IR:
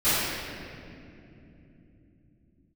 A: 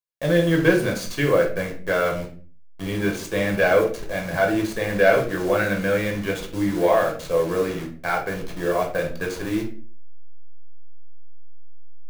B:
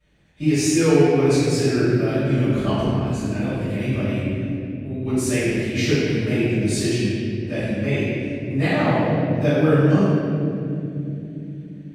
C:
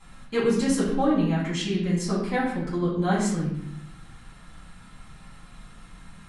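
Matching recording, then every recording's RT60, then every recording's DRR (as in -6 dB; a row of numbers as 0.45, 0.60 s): B; 0.40, 3.0, 0.75 s; 0.5, -20.5, -9.5 dB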